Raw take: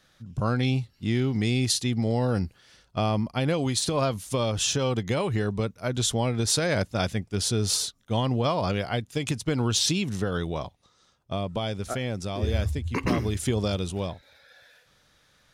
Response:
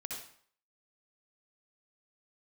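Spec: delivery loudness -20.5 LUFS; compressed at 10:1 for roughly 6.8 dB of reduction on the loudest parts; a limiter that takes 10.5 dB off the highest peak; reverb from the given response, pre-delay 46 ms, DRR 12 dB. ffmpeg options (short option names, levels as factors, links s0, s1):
-filter_complex "[0:a]acompressor=threshold=0.0447:ratio=10,alimiter=level_in=1.41:limit=0.0631:level=0:latency=1,volume=0.708,asplit=2[s0][s1];[1:a]atrim=start_sample=2205,adelay=46[s2];[s1][s2]afir=irnorm=-1:irlink=0,volume=0.266[s3];[s0][s3]amix=inputs=2:normalize=0,volume=5.96"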